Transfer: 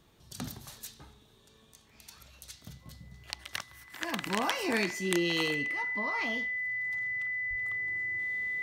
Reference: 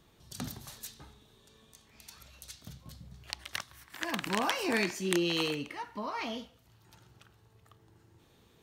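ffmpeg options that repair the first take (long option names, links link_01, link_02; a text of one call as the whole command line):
ffmpeg -i in.wav -filter_complex "[0:a]bandreject=frequency=2000:width=30,asplit=3[link_01][link_02][link_03];[link_01]afade=type=out:start_time=7.49:duration=0.02[link_04];[link_02]highpass=frequency=140:width=0.5412,highpass=frequency=140:width=1.3066,afade=type=in:start_time=7.49:duration=0.02,afade=type=out:start_time=7.61:duration=0.02[link_05];[link_03]afade=type=in:start_time=7.61:duration=0.02[link_06];[link_04][link_05][link_06]amix=inputs=3:normalize=0,asetnsamples=nb_out_samples=441:pad=0,asendcmd='7.57 volume volume -5dB',volume=0dB" out.wav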